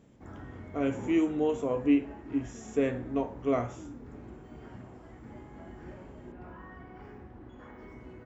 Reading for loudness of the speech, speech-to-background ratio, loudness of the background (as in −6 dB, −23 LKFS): −30.5 LKFS, 16.5 dB, −47.0 LKFS